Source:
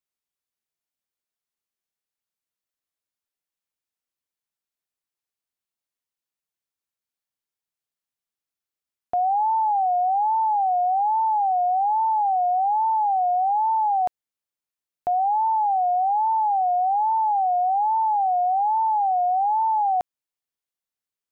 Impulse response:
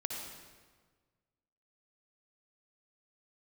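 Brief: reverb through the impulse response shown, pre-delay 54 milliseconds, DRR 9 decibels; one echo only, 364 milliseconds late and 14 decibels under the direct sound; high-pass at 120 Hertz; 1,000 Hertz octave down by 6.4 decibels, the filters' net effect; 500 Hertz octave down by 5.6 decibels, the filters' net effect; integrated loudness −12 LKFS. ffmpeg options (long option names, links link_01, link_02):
-filter_complex "[0:a]highpass=120,equalizer=frequency=500:width_type=o:gain=-4,equalizer=frequency=1000:width_type=o:gain=-7,aecho=1:1:364:0.2,asplit=2[link_01][link_02];[1:a]atrim=start_sample=2205,adelay=54[link_03];[link_02][link_03]afir=irnorm=-1:irlink=0,volume=-10.5dB[link_04];[link_01][link_04]amix=inputs=2:normalize=0,volume=15dB"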